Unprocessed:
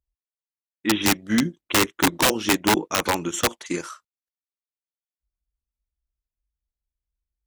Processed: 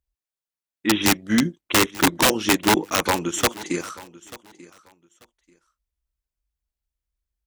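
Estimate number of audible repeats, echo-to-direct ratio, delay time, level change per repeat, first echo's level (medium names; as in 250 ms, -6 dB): 2, -20.0 dB, 888 ms, -13.5 dB, -20.0 dB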